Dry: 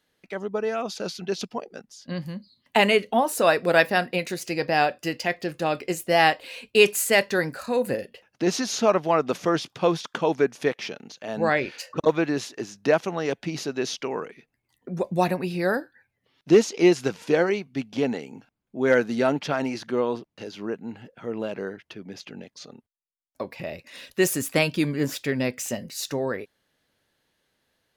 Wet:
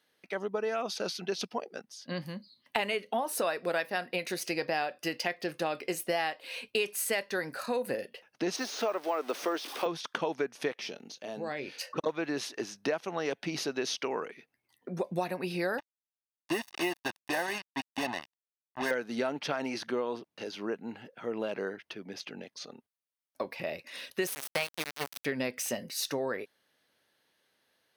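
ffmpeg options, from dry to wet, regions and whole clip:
-filter_complex "[0:a]asettb=1/sr,asplit=3[s0][s1][s2];[s0]atrim=end=8.564[s3];[s1]atrim=start=8.56:end=9.86,asetpts=PTS-STARTPTS,afade=t=in:d=0.004:c=qsin,afade=t=out:st=1.296:d=0.004:c=qsin,aeval=exprs='val(0)+0.5*0.02*sgn(val(0))':c=same,deesser=0.75,highpass=f=280:w=0.5412,highpass=f=280:w=1.3066[s4];[s2]atrim=start=9.856[s5];[s3][s4]acrossfade=d=0.004:c1=hsin:c2=qsin[s6];[s6][s5]acrossfade=d=0.004:c1=qsin:c2=hsin,asettb=1/sr,asplit=3[s7][s8][s9];[s7]atrim=end=10.814[s10];[s8]atrim=start=10.81:end=11.81,asetpts=PTS-STARTPTS,afade=t=in:d=0.004:c=qsin,afade=t=out:st=0.996:d=0.004:c=qsin,equalizer=f=1400:t=o:w=2.1:g=-8.5,acompressor=threshold=0.0224:ratio=2.5:attack=3.2:release=140:knee=1:detection=peak,asplit=2[s11][s12];[s12]adelay=21,volume=0.224[s13];[s11][s13]amix=inputs=2:normalize=0,atrim=end_sample=44100[s14];[s9]atrim=start=11.806[s15];[s10][s14]acrossfade=d=0.004:c1=hsin:c2=qsin[s16];[s16][s15]acrossfade=d=0.004:c1=qsin:c2=hsin,asettb=1/sr,asplit=3[s17][s18][s19];[s17]atrim=end=15.784[s20];[s18]atrim=start=15.78:end=18.91,asetpts=PTS-STARTPTS,afade=t=in:d=0.004:c=qsin,afade=t=out:st=3.126:d=0.004:c=qsin,bass=f=250:g=-13,treble=f=4000:g=-12,acrusher=bits=4:mix=0:aa=0.5,aecho=1:1:1.1:0.87,atrim=end_sample=138033[s21];[s19]atrim=start=18.906[s22];[s20][s21]acrossfade=d=0.004:c1=hsin:c2=qsin[s23];[s23][s22]acrossfade=d=0.004:c1=qsin:c2=hsin,asettb=1/sr,asplit=3[s24][s25][s26];[s24]atrim=end=24.274[s27];[s25]atrim=start=24.27:end=25.25,asetpts=PTS-STARTPTS,afade=t=in:d=0.004:c=qsin,afade=t=out:st=0.976:d=0.004:c=qsin,equalizer=f=280:t=o:w=0.87:g=-13.5,aeval=exprs='val(0)*gte(abs(val(0)),0.0596)':c=same[s28];[s26]atrim=start=25.246[s29];[s27][s28]acrossfade=d=0.004:c1=hsin:c2=qsin[s30];[s30][s29]acrossfade=d=0.004:c1=qsin:c2=hsin,highpass=f=350:p=1,bandreject=f=7200:w=5.5,acompressor=threshold=0.0398:ratio=6"

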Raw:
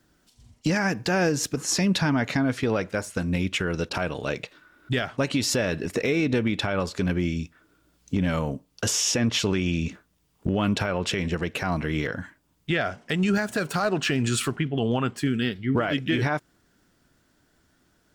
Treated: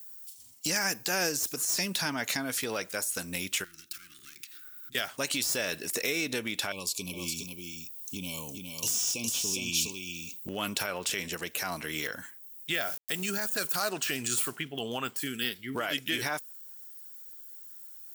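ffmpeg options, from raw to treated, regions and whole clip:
-filter_complex "[0:a]asettb=1/sr,asplit=3[s0][s1][s2];[s0]atrim=end=3.644[s3];[s1]atrim=start=3.64:end=4.95,asetpts=PTS-STARTPTS,afade=t=in:d=0.004:c=qsin,afade=t=out:st=1.306:d=0.004:c=qsin,aeval=exprs='clip(val(0),-1,0.0141)':c=same,acompressor=threshold=0.00891:ratio=6:attack=3.2:release=140:knee=1:detection=peak,asuperstop=centerf=670:order=20:qfactor=0.83[s4];[s2]atrim=start=4.946[s5];[s3][s4]acrossfade=d=0.004:c1=hsin:c2=qsin[s6];[s6][s5]acrossfade=d=0.004:c1=qsin:c2=hsin,asettb=1/sr,asplit=3[s7][s8][s9];[s7]atrim=end=6.724[s10];[s8]atrim=start=6.72:end=10.48,asetpts=PTS-STARTPTS,afade=t=in:d=0.004:c=qsin,afade=t=out:st=3.756:d=0.004:c=qsin,asuperstop=centerf=1600:order=20:qfactor=1.4,equalizer=f=670:w=1.1:g=-11,aecho=1:1:411:0.562,atrim=end_sample=165816[s11];[s9]atrim=start=10.476[s12];[s10][s11]acrossfade=d=0.004:c1=hsin:c2=qsin[s13];[s13][s12]acrossfade=d=0.004:c1=qsin:c2=hsin,asettb=1/sr,asplit=3[s14][s15][s16];[s14]atrim=end=12.744[s17];[s15]atrim=start=12.74:end=13.41,asetpts=PTS-STARTPTS,afade=t=in:d=0.004:c=qsin,afade=t=out:st=0.666:d=0.004:c=qsin,highpass=74,agate=range=0.0224:threshold=0.00562:ratio=3:release=100:detection=peak,aeval=exprs='val(0)*gte(abs(val(0)),0.00631)':c=same[s18];[s16]atrim=start=13.406[s19];[s17][s18]acrossfade=d=0.004:c1=hsin:c2=qsin[s20];[s20][s19]acrossfade=d=0.004:c1=qsin:c2=hsin,aemphasis=mode=production:type=riaa,deesser=0.45,highshelf=f=6000:g=11.5,volume=0.473"

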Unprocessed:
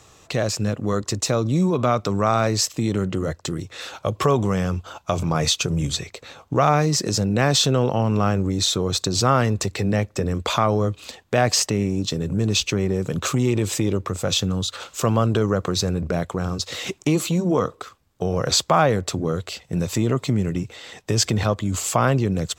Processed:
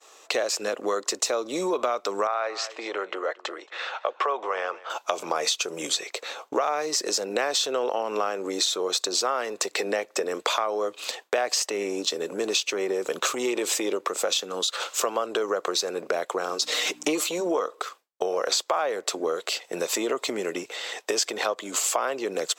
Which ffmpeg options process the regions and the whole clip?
-filter_complex "[0:a]asettb=1/sr,asplit=3[s0][s1][s2];[s0]atrim=end=2.274[s3];[s1]atrim=start=2.27:end=4.9,asetpts=PTS-STARTPTS,afade=t=in:d=0.004:c=qsin,afade=t=out:st=2.626:d=0.004:c=qsin,highpass=610,lowpass=2500,aecho=1:1:226:0.0891,atrim=end_sample=115983[s4];[s2]atrim=start=4.896[s5];[s3][s4]acrossfade=d=0.004:c1=hsin:c2=qsin[s6];[s6][s5]acrossfade=d=0.004:c1=qsin:c2=hsin,asettb=1/sr,asplit=3[s7][s8][s9];[s7]atrim=end=16.614[s10];[s8]atrim=start=16.61:end=17.24,asetpts=PTS-STARTPTS,afade=t=in:d=0.004:c=qsin,afade=t=out:st=0.626:d=0.004:c=qsin,aecho=1:1:6.6:0.99,atrim=end_sample=27783,aeval=exprs='val(0)+0.0316*(sin(2*PI*60*n/s)+sin(2*PI*2*60*n/s)/2+sin(2*PI*3*60*n/s)/3+sin(2*PI*4*60*n/s)/4+sin(2*PI*5*60*n/s)/5)':c=same[s11];[s9]atrim=start=17.236[s12];[s10][s11]acrossfade=d=0.004:c1=hsin:c2=qsin[s13];[s13][s12]acrossfade=d=0.004:c1=qsin:c2=hsin,highpass=f=400:w=0.5412,highpass=f=400:w=1.3066,agate=range=0.0224:threshold=0.00447:ratio=3:detection=peak,acompressor=threshold=0.0355:ratio=5,volume=2"

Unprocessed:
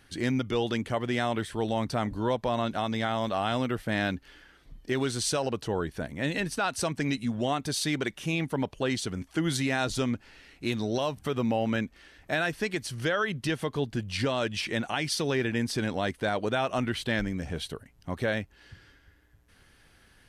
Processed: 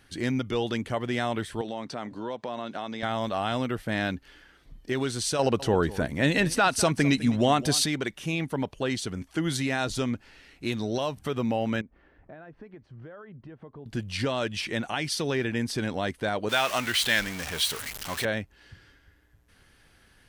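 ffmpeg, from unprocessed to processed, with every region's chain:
-filter_complex "[0:a]asettb=1/sr,asplit=3[s0][s1][s2];[s0]atrim=end=1.614[s3];[s1]atrim=start=1.61:end=3.03,asetpts=PTS-STARTPTS,afade=t=in:d=0.004:c=qsin,afade=t=out:st=1.416:d=0.004:c=qsin,acompressor=threshold=0.0355:ratio=4:attack=3.2:release=140:knee=1:detection=peak,highpass=210,lowpass=6900[s4];[s2]atrim=start=3.026[s5];[s3][s4]acrossfade=d=0.004:c1=hsin:c2=qsin[s6];[s6][s5]acrossfade=d=0.004:c1=qsin:c2=hsin,asettb=1/sr,asplit=3[s7][s8][s9];[s7]atrim=end=5.394[s10];[s8]atrim=start=5.39:end=7.86,asetpts=PTS-STARTPTS,afade=t=in:d=0.004:c=qsin,afade=t=out:st=2.466:d=0.004:c=qsin,acontrast=63,aecho=1:1:204:0.133,atrim=end_sample=108927[s11];[s9]atrim=start=7.856[s12];[s10][s11]acrossfade=d=0.004:c1=hsin:c2=qsin[s13];[s13][s12]acrossfade=d=0.004:c1=qsin:c2=hsin,asettb=1/sr,asplit=3[s14][s15][s16];[s14]atrim=end=11.814[s17];[s15]atrim=start=11.81:end=13.86,asetpts=PTS-STARTPTS,afade=t=in:d=0.004:c=qsin,afade=t=out:st=2.046:d=0.004:c=qsin,acompressor=threshold=0.00562:ratio=3:attack=3.2:release=140:knee=1:detection=peak,lowpass=1100[s18];[s16]atrim=start=13.856[s19];[s17][s18]acrossfade=d=0.004:c1=hsin:c2=qsin[s20];[s20][s19]acrossfade=d=0.004:c1=qsin:c2=hsin,asettb=1/sr,asplit=3[s21][s22][s23];[s21]atrim=end=16.494[s24];[s22]atrim=start=16.49:end=18.25,asetpts=PTS-STARTPTS,afade=t=in:d=0.004:c=qsin,afade=t=out:st=1.756:d=0.004:c=qsin,aeval=exprs='val(0)+0.5*0.02*sgn(val(0))':c=same,tiltshelf=f=760:g=-9[s25];[s23]atrim=start=18.246[s26];[s24][s25]acrossfade=d=0.004:c1=hsin:c2=qsin[s27];[s27][s26]acrossfade=d=0.004:c1=qsin:c2=hsin"

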